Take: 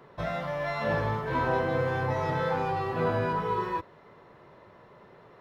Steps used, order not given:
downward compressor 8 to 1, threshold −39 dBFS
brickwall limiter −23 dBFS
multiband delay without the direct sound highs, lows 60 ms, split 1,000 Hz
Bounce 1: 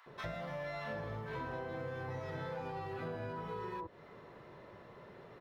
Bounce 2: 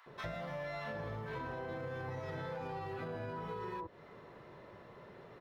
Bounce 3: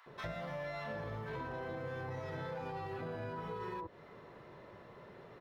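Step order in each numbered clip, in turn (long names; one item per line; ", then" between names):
multiband delay without the direct sound, then downward compressor, then brickwall limiter
multiband delay without the direct sound, then brickwall limiter, then downward compressor
brickwall limiter, then multiband delay without the direct sound, then downward compressor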